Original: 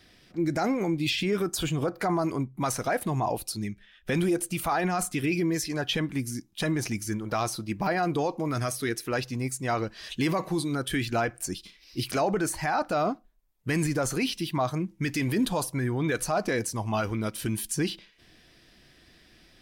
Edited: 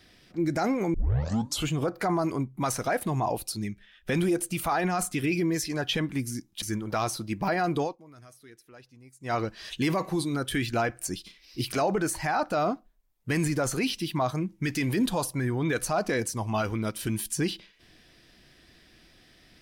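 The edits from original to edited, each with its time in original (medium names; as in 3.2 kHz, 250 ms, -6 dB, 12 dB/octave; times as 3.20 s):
0.94 s: tape start 0.74 s
6.62–7.01 s: delete
8.21–9.73 s: dip -22 dB, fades 0.14 s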